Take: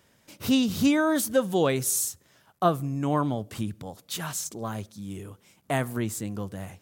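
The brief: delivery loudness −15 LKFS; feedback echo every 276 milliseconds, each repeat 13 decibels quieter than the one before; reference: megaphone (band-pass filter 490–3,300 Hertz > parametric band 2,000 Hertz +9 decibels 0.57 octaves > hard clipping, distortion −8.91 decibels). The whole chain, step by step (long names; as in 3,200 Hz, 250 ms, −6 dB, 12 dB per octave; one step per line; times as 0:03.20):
band-pass filter 490–3,300 Hz
parametric band 2,000 Hz +9 dB 0.57 octaves
repeating echo 276 ms, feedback 22%, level −13 dB
hard clipping −24 dBFS
level +18 dB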